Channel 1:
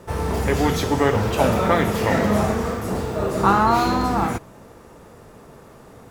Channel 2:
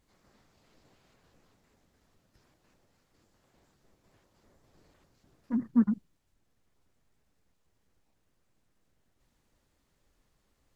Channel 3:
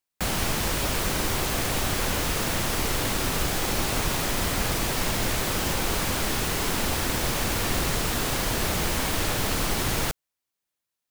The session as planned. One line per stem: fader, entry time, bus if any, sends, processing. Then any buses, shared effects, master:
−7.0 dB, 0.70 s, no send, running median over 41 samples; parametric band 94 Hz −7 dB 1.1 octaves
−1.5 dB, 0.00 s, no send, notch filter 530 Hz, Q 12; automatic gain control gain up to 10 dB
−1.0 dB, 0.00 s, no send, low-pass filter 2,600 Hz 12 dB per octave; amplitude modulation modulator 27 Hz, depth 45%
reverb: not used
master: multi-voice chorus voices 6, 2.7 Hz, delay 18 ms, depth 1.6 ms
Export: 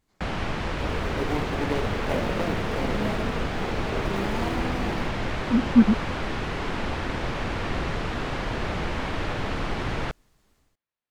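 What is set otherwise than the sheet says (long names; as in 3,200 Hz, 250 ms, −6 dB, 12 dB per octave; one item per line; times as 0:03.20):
stem 3: missing amplitude modulation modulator 27 Hz, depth 45%
master: missing multi-voice chorus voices 6, 2.7 Hz, delay 18 ms, depth 1.6 ms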